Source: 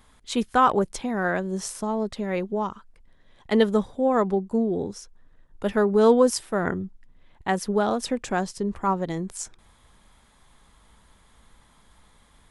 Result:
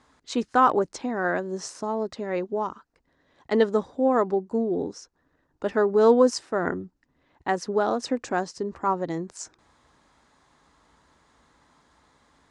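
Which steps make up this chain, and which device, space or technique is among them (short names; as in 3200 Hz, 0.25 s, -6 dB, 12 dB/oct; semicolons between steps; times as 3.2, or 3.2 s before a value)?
car door speaker (speaker cabinet 98–7000 Hz, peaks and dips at 110 Hz -8 dB, 200 Hz -8 dB, 290 Hz +5 dB, 2300 Hz -4 dB, 3300 Hz -8 dB)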